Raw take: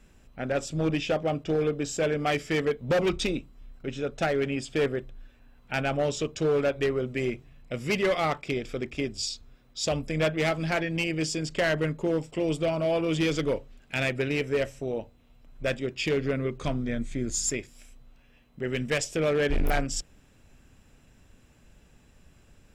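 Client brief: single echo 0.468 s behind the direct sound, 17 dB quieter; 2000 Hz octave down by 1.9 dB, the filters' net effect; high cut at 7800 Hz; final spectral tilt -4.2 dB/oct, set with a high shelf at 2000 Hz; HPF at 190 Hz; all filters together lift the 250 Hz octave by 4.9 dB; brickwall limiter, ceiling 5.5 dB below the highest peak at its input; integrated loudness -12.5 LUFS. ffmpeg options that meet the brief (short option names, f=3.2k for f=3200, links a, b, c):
-af "highpass=190,lowpass=7.8k,equalizer=f=250:t=o:g=8,highshelf=f=2k:g=7,equalizer=f=2k:t=o:g=-7,alimiter=limit=-17.5dB:level=0:latency=1,aecho=1:1:468:0.141,volume=15.5dB"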